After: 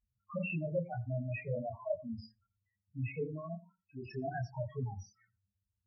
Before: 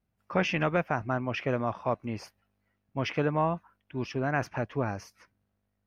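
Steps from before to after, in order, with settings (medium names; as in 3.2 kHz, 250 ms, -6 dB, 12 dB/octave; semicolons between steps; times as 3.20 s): treble shelf 3.3 kHz +8 dB; 3.23–4.05 s: level held to a coarse grid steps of 17 dB; loudest bins only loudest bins 2; chorus voices 6, 0.4 Hz, delay 24 ms, depth 1.6 ms; on a send: reverberation RT60 0.15 s, pre-delay 81 ms, DRR 22 dB; on the sum: trim +1.5 dB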